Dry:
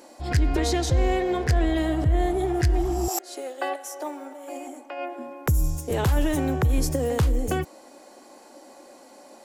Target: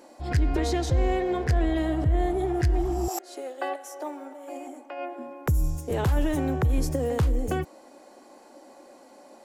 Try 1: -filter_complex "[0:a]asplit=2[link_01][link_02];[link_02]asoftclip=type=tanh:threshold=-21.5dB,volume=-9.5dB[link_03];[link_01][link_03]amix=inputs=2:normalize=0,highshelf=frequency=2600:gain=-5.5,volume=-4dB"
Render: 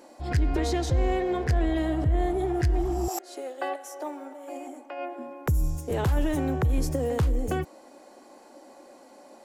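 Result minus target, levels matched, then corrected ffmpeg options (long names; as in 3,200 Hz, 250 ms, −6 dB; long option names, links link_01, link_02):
soft clipping: distortion +15 dB
-filter_complex "[0:a]asplit=2[link_01][link_02];[link_02]asoftclip=type=tanh:threshold=-11dB,volume=-9.5dB[link_03];[link_01][link_03]amix=inputs=2:normalize=0,highshelf=frequency=2600:gain=-5.5,volume=-4dB"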